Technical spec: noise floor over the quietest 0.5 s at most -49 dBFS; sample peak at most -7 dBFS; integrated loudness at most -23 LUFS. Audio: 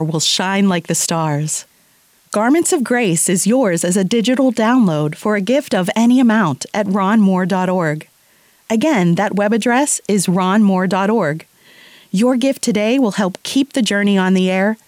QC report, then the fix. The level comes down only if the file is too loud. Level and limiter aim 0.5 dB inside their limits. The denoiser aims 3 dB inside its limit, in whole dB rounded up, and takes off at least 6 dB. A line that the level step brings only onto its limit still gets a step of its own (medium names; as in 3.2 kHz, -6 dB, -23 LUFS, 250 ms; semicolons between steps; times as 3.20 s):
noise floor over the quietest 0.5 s -54 dBFS: pass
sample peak -6.0 dBFS: fail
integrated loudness -15.0 LUFS: fail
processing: trim -8.5 dB